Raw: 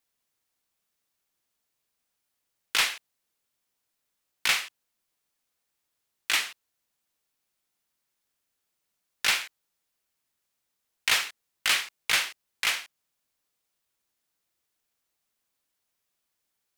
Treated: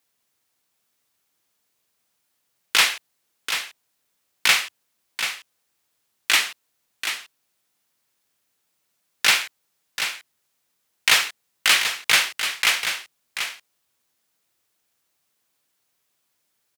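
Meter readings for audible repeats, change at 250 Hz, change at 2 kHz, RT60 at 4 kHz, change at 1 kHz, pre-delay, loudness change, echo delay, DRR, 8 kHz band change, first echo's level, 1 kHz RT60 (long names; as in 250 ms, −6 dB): 1, +7.5 dB, +7.5 dB, no reverb audible, +7.5 dB, no reverb audible, +5.5 dB, 736 ms, no reverb audible, +7.5 dB, −8.5 dB, no reverb audible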